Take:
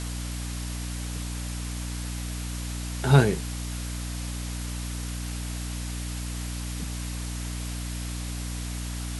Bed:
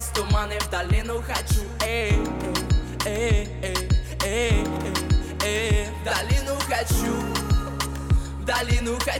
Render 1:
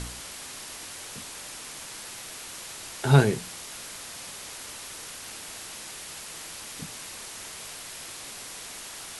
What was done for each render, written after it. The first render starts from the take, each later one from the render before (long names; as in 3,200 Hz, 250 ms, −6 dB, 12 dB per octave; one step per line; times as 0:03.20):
hum removal 60 Hz, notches 5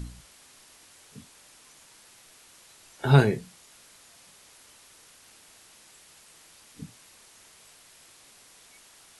noise reduction from a noise print 14 dB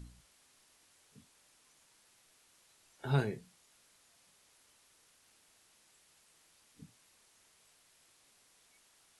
level −13 dB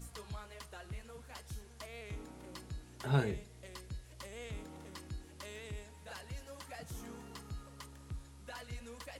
mix in bed −24 dB